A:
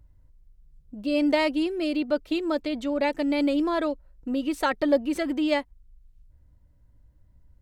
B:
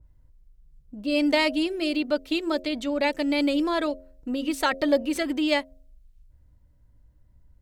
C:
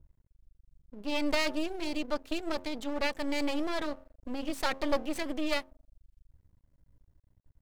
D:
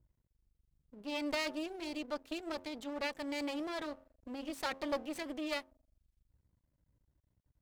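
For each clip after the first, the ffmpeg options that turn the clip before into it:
-af "bandreject=f=89.57:t=h:w=4,bandreject=f=179.14:t=h:w=4,bandreject=f=268.71:t=h:w=4,bandreject=f=358.28:t=h:w=4,bandreject=f=447.85:t=h:w=4,bandreject=f=537.42:t=h:w=4,bandreject=f=626.99:t=h:w=4,bandreject=f=716.56:t=h:w=4,adynamicequalizer=threshold=0.00891:dfrequency=1900:dqfactor=0.7:tfrequency=1900:tqfactor=0.7:attack=5:release=100:ratio=0.375:range=3:mode=boostabove:tftype=highshelf"
-af "aeval=exprs='max(val(0),0)':c=same,volume=0.708"
-af "highpass=f=77:p=1,volume=0.501"

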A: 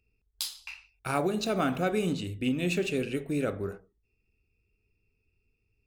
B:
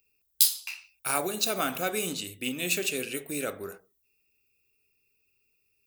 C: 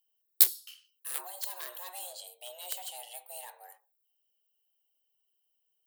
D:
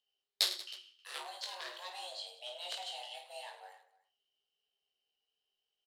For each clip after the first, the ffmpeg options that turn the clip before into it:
-af "aemphasis=mode=production:type=riaa"
-af "aeval=exprs='0.668*(cos(1*acos(clip(val(0)/0.668,-1,1)))-cos(1*PI/2))+0.133*(cos(7*acos(clip(val(0)/0.668,-1,1)))-cos(7*PI/2))':c=same,aexciter=amount=2:drive=3.6:freq=3000,afreqshift=360,volume=0.473"
-filter_complex "[0:a]flanger=delay=8.8:depth=8.9:regen=78:speed=0.86:shape=triangular,lowpass=f=4200:t=q:w=1.6,asplit=2[s0][s1];[s1]aecho=0:1:20|52|103.2|185.1|316.2:0.631|0.398|0.251|0.158|0.1[s2];[s0][s2]amix=inputs=2:normalize=0,volume=1.33"

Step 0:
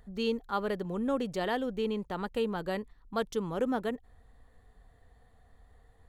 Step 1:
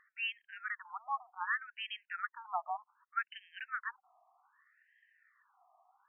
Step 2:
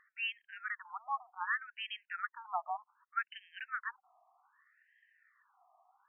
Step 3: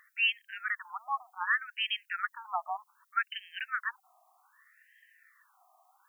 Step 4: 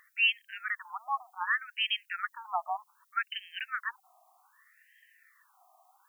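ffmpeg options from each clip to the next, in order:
-af "lowpass=3900,equalizer=f=2700:t=o:w=1.3:g=3.5,afftfilt=real='re*between(b*sr/1024,890*pow(2300/890,0.5+0.5*sin(2*PI*0.65*pts/sr))/1.41,890*pow(2300/890,0.5+0.5*sin(2*PI*0.65*pts/sr))*1.41)':imag='im*between(b*sr/1024,890*pow(2300/890,0.5+0.5*sin(2*PI*0.65*pts/sr))/1.41,890*pow(2300/890,0.5+0.5*sin(2*PI*0.65*pts/sr))*1.41)':win_size=1024:overlap=0.75,volume=1.58"
-af anull
-af "crystalizer=i=7:c=0"
-af "equalizer=f=1500:w=1.6:g=-5,volume=1.41"

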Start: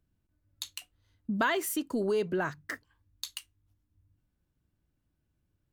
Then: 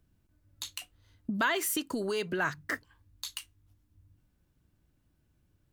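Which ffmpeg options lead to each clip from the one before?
-filter_complex "[0:a]acrossover=split=1200[s0][s1];[s0]acompressor=threshold=0.0126:ratio=6[s2];[s1]alimiter=level_in=1.68:limit=0.0631:level=0:latency=1:release=31,volume=0.596[s3];[s2][s3]amix=inputs=2:normalize=0,volume=2.11"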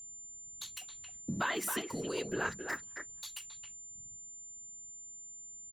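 -filter_complex "[0:a]afftfilt=real='hypot(re,im)*cos(2*PI*random(0))':imag='hypot(re,im)*sin(2*PI*random(1))':win_size=512:overlap=0.75,aeval=exprs='val(0)+0.00447*sin(2*PI*7200*n/s)':c=same,asplit=2[s0][s1];[s1]adelay=270,highpass=300,lowpass=3400,asoftclip=type=hard:threshold=0.0376,volume=0.501[s2];[s0][s2]amix=inputs=2:normalize=0,volume=1.12"

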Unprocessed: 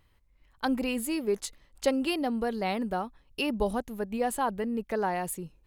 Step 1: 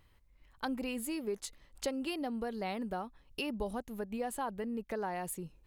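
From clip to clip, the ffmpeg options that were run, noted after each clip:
-af "acompressor=threshold=0.01:ratio=2"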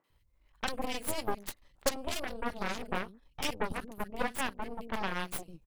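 -filter_complex "[0:a]acrossover=split=220|1800[s0][s1][s2];[s2]adelay=40[s3];[s0]adelay=100[s4];[s4][s1][s3]amix=inputs=3:normalize=0,aeval=exprs='0.0891*(cos(1*acos(clip(val(0)/0.0891,-1,1)))-cos(1*PI/2))+0.0158*(cos(3*acos(clip(val(0)/0.0891,-1,1)))-cos(3*PI/2))+0.0282*(cos(5*acos(clip(val(0)/0.0891,-1,1)))-cos(5*PI/2))+0.0316*(cos(7*acos(clip(val(0)/0.0891,-1,1)))-cos(7*PI/2))+0.0158*(cos(8*acos(clip(val(0)/0.0891,-1,1)))-cos(8*PI/2))':c=same,volume=1.68"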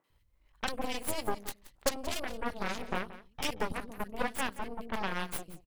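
-af "aecho=1:1:177:0.158"

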